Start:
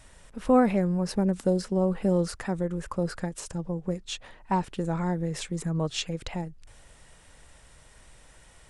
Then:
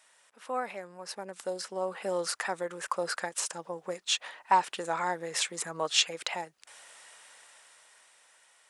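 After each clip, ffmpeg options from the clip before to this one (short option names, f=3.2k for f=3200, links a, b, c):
-af "highpass=820,dynaudnorm=f=280:g=13:m=12.5dB,volume=-5dB"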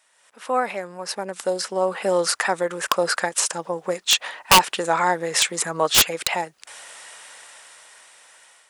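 -af "aeval=exprs='(mod(7.08*val(0)+1,2)-1)/7.08':c=same,dynaudnorm=f=110:g=5:m=11dB"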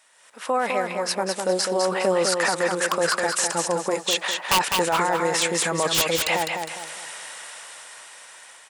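-filter_complex "[0:a]alimiter=limit=-17.5dB:level=0:latency=1:release=12,asplit=2[a][b];[b]aecho=0:1:204|408|612|816:0.562|0.197|0.0689|0.0241[c];[a][c]amix=inputs=2:normalize=0,volume=4dB"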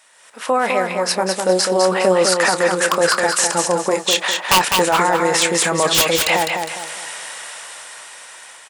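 -filter_complex "[0:a]asplit=2[a][b];[b]adelay=27,volume=-13dB[c];[a][c]amix=inputs=2:normalize=0,volume=6dB"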